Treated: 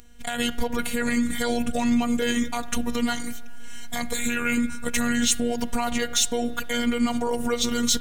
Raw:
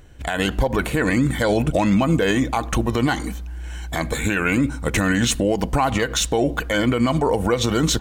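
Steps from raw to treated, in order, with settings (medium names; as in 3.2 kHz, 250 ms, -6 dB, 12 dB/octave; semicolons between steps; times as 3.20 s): tone controls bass +6 dB, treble 0 dB; robot voice 239 Hz; treble shelf 2.7 kHz +11.5 dB; in parallel at -8 dB: saturation -3.5 dBFS, distortion -18 dB; on the sum: spring tank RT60 2.9 s, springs 53/60 ms, chirp 30 ms, DRR 19 dB; trim -9 dB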